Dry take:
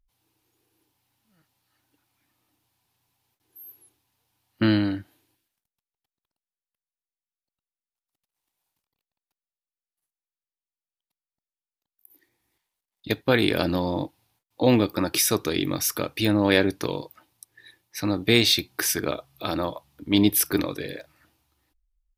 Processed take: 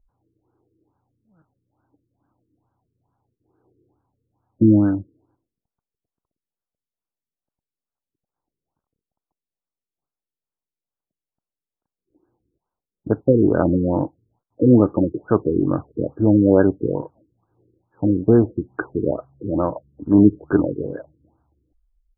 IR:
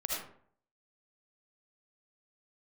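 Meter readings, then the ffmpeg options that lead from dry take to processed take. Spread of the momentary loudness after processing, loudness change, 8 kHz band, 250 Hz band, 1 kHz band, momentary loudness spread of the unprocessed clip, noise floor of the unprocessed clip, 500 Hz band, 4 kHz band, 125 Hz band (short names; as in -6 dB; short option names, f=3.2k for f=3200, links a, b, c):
14 LU, +4.5 dB, under -40 dB, +7.5 dB, +0.5 dB, 13 LU, under -85 dBFS, +6.0 dB, under -40 dB, +7.5 dB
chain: -af "lowpass=f=3.2k:w=0.5412,lowpass=f=3.2k:w=1.3066,highshelf=f=2.3k:g=-11.5,afftfilt=real='re*lt(b*sr/1024,470*pow(1700/470,0.5+0.5*sin(2*PI*2.3*pts/sr)))':imag='im*lt(b*sr/1024,470*pow(1700/470,0.5+0.5*sin(2*PI*2.3*pts/sr)))':win_size=1024:overlap=0.75,volume=7.5dB"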